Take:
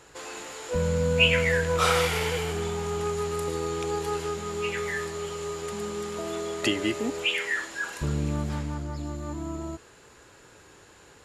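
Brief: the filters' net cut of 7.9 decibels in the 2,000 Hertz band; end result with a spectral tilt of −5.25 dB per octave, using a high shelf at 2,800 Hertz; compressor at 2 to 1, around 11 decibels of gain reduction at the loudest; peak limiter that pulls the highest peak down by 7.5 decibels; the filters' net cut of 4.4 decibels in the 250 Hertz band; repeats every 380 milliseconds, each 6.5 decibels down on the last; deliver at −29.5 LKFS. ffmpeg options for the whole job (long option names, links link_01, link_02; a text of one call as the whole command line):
ffmpeg -i in.wav -af "equalizer=frequency=250:width_type=o:gain=-7,equalizer=frequency=2000:width_type=o:gain=-6.5,highshelf=frequency=2800:gain=-8,acompressor=threshold=-43dB:ratio=2,alimiter=level_in=8dB:limit=-24dB:level=0:latency=1,volume=-8dB,aecho=1:1:380|760|1140|1520|1900|2280:0.473|0.222|0.105|0.0491|0.0231|0.0109,volume=11dB" out.wav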